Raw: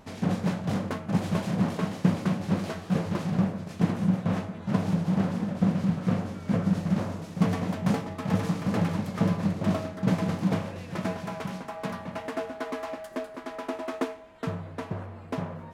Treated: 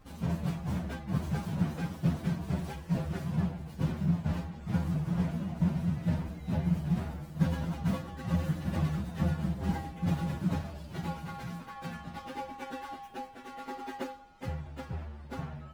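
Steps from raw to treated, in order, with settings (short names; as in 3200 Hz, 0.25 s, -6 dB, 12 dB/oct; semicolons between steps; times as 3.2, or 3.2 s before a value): inharmonic rescaling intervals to 125%; low shelf 130 Hz +7.5 dB; gain -4.5 dB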